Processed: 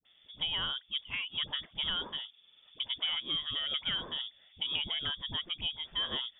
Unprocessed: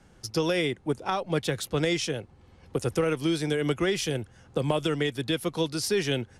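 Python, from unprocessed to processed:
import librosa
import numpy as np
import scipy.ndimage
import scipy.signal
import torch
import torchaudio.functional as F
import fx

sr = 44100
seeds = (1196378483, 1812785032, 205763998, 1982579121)

y = fx.freq_invert(x, sr, carrier_hz=3500)
y = fx.dispersion(y, sr, late='highs', ms=52.0, hz=580.0)
y = y * librosa.db_to_amplitude(-8.5)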